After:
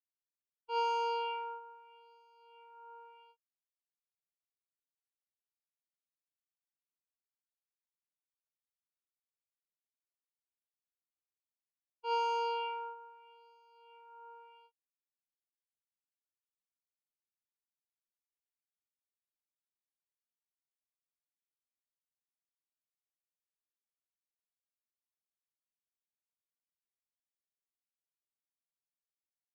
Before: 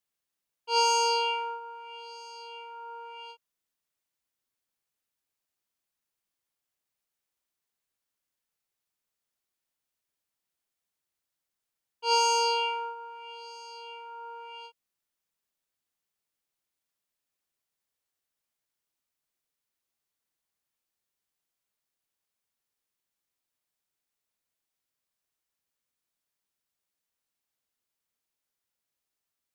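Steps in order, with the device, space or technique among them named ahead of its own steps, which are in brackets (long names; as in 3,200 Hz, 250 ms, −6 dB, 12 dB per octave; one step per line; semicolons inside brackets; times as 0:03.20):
hearing-loss simulation (low-pass filter 2,100 Hz 12 dB per octave; downward expander −38 dBFS)
level −7 dB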